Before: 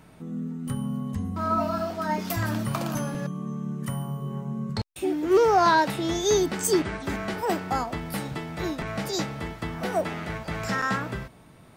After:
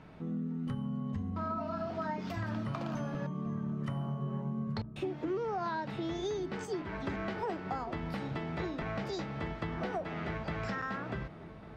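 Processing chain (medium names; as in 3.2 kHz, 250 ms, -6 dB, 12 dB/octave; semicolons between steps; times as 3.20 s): peaking EQ 12 kHz +4 dB 0.78 oct; hum notches 60/120/180/240/300 Hz; compression 12:1, threshold -32 dBFS, peak gain reduction 17.5 dB; distance through air 190 m; on a send: filtered feedback delay 1149 ms, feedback 53%, low-pass 940 Hz, level -13 dB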